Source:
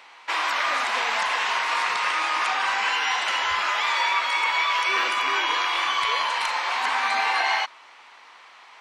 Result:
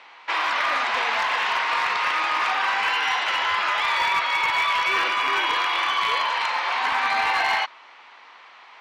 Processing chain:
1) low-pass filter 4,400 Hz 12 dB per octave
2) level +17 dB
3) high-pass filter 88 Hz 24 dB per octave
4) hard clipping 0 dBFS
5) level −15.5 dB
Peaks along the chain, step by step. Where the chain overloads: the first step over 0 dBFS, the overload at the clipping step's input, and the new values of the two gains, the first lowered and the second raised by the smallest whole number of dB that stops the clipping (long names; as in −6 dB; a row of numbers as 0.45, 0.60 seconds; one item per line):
−11.0, +6.0, +6.0, 0.0, −15.5 dBFS
step 2, 6.0 dB
step 2 +11 dB, step 5 −9.5 dB